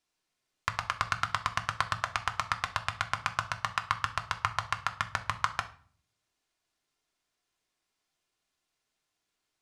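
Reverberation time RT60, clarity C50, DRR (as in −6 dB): 0.50 s, 14.5 dB, 4.5 dB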